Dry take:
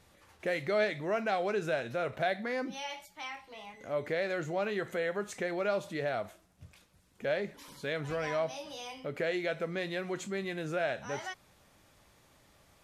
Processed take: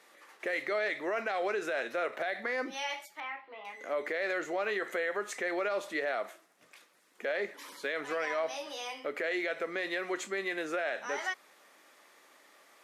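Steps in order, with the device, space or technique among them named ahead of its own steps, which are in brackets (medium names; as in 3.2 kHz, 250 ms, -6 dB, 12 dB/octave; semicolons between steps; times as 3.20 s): laptop speaker (high-pass 300 Hz 24 dB/octave; peaking EQ 1.2 kHz +4.5 dB 0.29 oct; peaking EQ 1.9 kHz +6.5 dB 0.54 oct; peak limiter -26.5 dBFS, peak gain reduction 9.5 dB); 3.20–3.65 s: distance through air 460 m; trim +2.5 dB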